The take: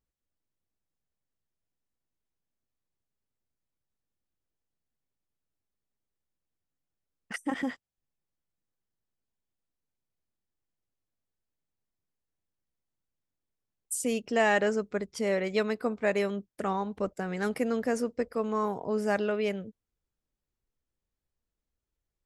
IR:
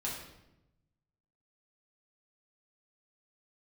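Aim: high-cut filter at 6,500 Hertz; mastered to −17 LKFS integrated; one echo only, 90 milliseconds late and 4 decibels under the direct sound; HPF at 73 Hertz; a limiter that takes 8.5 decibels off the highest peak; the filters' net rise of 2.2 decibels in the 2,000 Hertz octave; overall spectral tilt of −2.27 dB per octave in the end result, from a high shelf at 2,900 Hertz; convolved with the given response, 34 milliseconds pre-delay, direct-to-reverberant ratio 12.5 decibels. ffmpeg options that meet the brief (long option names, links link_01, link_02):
-filter_complex "[0:a]highpass=73,lowpass=6500,equalizer=frequency=2000:width_type=o:gain=4.5,highshelf=frequency=2900:gain=-5.5,alimiter=limit=-21.5dB:level=0:latency=1,aecho=1:1:90:0.631,asplit=2[link_01][link_02];[1:a]atrim=start_sample=2205,adelay=34[link_03];[link_02][link_03]afir=irnorm=-1:irlink=0,volume=-15dB[link_04];[link_01][link_04]amix=inputs=2:normalize=0,volume=14dB"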